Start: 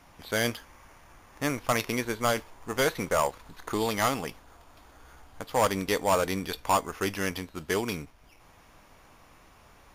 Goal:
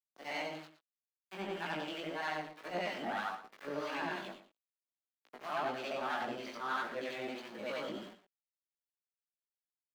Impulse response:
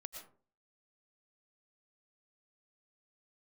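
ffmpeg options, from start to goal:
-filter_complex "[0:a]afftfilt=real='re':imag='-im':win_size=8192:overlap=0.75,equalizer=frequency=140:width_type=o:width=0.73:gain=12.5,bandreject=frequency=60:width_type=h:width=6,bandreject=frequency=120:width_type=h:width=6,bandreject=frequency=180:width_type=h:width=6,bandreject=frequency=240:width_type=h:width=6,bandreject=frequency=300:width_type=h:width=6,bandreject=frequency=360:width_type=h:width=6,bandreject=frequency=420:width_type=h:width=6,acrossover=split=4700[link_01][link_02];[link_02]acompressor=threshold=-54dB:ratio=8[link_03];[link_01][link_03]amix=inputs=2:normalize=0,asetrate=58866,aresample=44100,atempo=0.749154,aeval=exprs='(tanh(22.4*val(0)+0.05)-tanh(0.05))/22.4':channel_layout=same,aeval=exprs='val(0)*gte(abs(val(0)),0.00794)':channel_layout=same,acrossover=split=240 4600:gain=0.0891 1 0.224[link_04][link_05][link_06];[link_04][link_05][link_06]amix=inputs=3:normalize=0,flanger=delay=17:depth=3.9:speed=1.7,acrossover=split=910[link_07][link_08];[link_07]aeval=exprs='val(0)*(1-0.5/2+0.5/2*cos(2*PI*3.1*n/s))':channel_layout=same[link_09];[link_08]aeval=exprs='val(0)*(1-0.5/2-0.5/2*cos(2*PI*3.1*n/s))':channel_layout=same[link_10];[link_09][link_10]amix=inputs=2:normalize=0,asplit=2[link_11][link_12];[link_12]aecho=0:1:116:0.224[link_13];[link_11][link_13]amix=inputs=2:normalize=0,volume=2dB"

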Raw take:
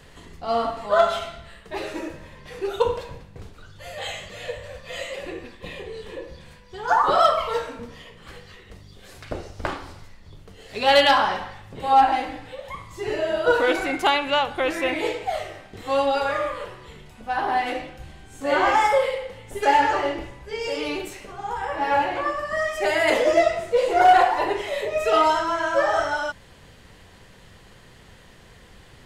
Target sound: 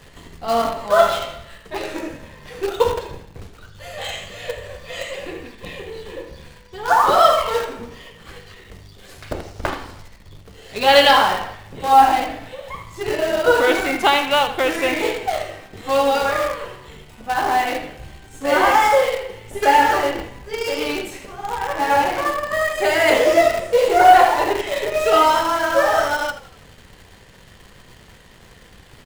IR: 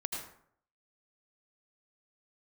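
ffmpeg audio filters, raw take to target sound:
-filter_complex "[1:a]atrim=start_sample=2205,atrim=end_sample=3528[link_01];[0:a][link_01]afir=irnorm=-1:irlink=0,asplit=2[link_02][link_03];[link_03]acrusher=bits=5:dc=4:mix=0:aa=0.000001,volume=-5.5dB[link_04];[link_02][link_04]amix=inputs=2:normalize=0,asettb=1/sr,asplit=3[link_05][link_06][link_07];[link_05]atrim=end=22.274[link_08];[link_06]atrim=start=22.27:end=22.91,asetpts=PTS-STARTPTS,afade=type=in:duration=0.004:curve=qsin,afade=type=out:start_time=0.636:duration=0.004:curve=qsin,bandreject=frequency=5600:width=7.3[link_09];[link_07]atrim=start=22.906[link_10];[link_08][link_09]acrossfade=duration=0.004:curve1=hsin:curve2=qsin[link_11];[link_11][link_10]acrossfade=duration=0.004:curve1=qsin:curve2=hsin,asplit=5[link_12][link_13][link_14][link_15][link_16];[link_13]adelay=81,afreqshift=-40,volume=-16dB[link_17];[link_14]adelay=162,afreqshift=-80,volume=-22.4dB[link_18];[link_15]adelay=243,afreqshift=-120,volume=-28.8dB[link_19];[link_16]adelay=324,afreqshift=-160,volume=-35.1dB[link_20];[link_12][link_17][link_18][link_19][link_20]amix=inputs=5:normalize=0,volume=1.5dB"

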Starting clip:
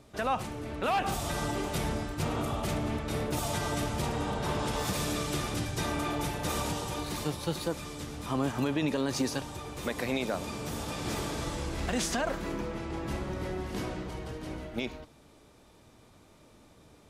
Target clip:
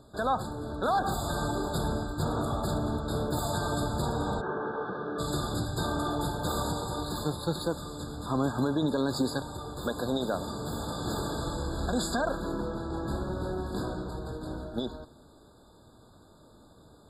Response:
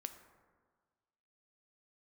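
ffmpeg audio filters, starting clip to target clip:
-filter_complex "[0:a]asplit=3[link_01][link_02][link_03];[link_01]afade=type=out:start_time=4.4:duration=0.02[link_04];[link_02]highpass=270,equalizer=frequency=270:width_type=q:width=4:gain=-4,equalizer=frequency=410:width_type=q:width=4:gain=5,equalizer=frequency=620:width_type=q:width=4:gain=-7,equalizer=frequency=980:width_type=q:width=4:gain=-5,equalizer=frequency=1800:width_type=q:width=4:gain=7,lowpass=frequency=2000:width=0.5412,lowpass=frequency=2000:width=1.3066,afade=type=in:start_time=4.4:duration=0.02,afade=type=out:start_time=5.18:duration=0.02[link_05];[link_03]afade=type=in:start_time=5.18:duration=0.02[link_06];[link_04][link_05][link_06]amix=inputs=3:normalize=0,asplit=2[link_07][link_08];[1:a]atrim=start_sample=2205,highshelf=frequency=11000:gain=-4.5[link_09];[link_08][link_09]afir=irnorm=-1:irlink=0,volume=-8dB[link_10];[link_07][link_10]amix=inputs=2:normalize=0,afftfilt=real='re*eq(mod(floor(b*sr/1024/1700),2),0)':imag='im*eq(mod(floor(b*sr/1024/1700),2),0)':win_size=1024:overlap=0.75"

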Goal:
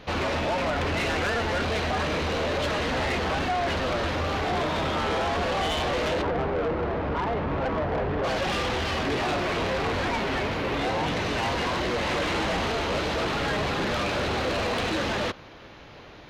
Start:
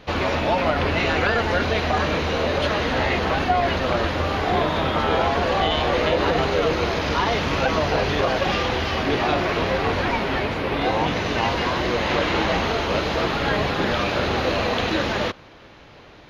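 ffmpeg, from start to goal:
ffmpeg -i in.wav -filter_complex "[0:a]asplit=3[link_01][link_02][link_03];[link_01]afade=type=out:start_time=6.21:duration=0.02[link_04];[link_02]lowpass=1200,afade=type=in:start_time=6.21:duration=0.02,afade=type=out:start_time=8.23:duration=0.02[link_05];[link_03]afade=type=in:start_time=8.23:duration=0.02[link_06];[link_04][link_05][link_06]amix=inputs=3:normalize=0,asoftclip=type=tanh:threshold=-23dB" out.wav

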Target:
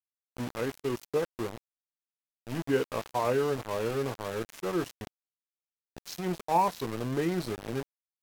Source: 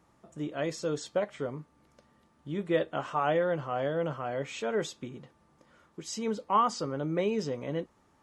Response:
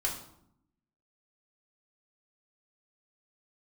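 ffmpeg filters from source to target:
-af "aeval=exprs='val(0)*gte(abs(val(0)),0.0211)':channel_layout=same,asetrate=36028,aresample=44100,atempo=1.22405"

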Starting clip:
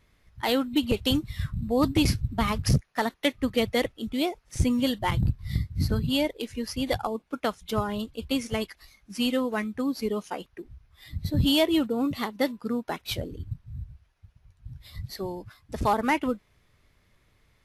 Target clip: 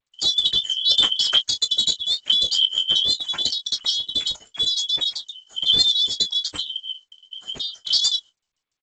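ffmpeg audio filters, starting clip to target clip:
ffmpeg -i in.wav -filter_complex "[0:a]afftfilt=real='real(if(lt(b,272),68*(eq(floor(b/68),0)*3+eq(floor(b/68),1)*0+eq(floor(b/68),2)*1+eq(floor(b/68),3)*2)+mod(b,68),b),0)':imag='imag(if(lt(b,272),68*(eq(floor(b/68),0)*3+eq(floor(b/68),1)*0+eq(floor(b/68),2)*1+eq(floor(b/68),3)*2)+mod(b,68),b),0)':win_size=2048:overlap=0.75,agate=range=-57dB:threshold=-56dB:ratio=16:detection=peak,asplit=2[link_01][link_02];[link_02]aecho=0:1:27|40|63:0.188|0.266|0.188[link_03];[link_01][link_03]amix=inputs=2:normalize=0,asetrate=88200,aresample=44100,volume=5dB" -ar 16000 -c:a g722 out.g722

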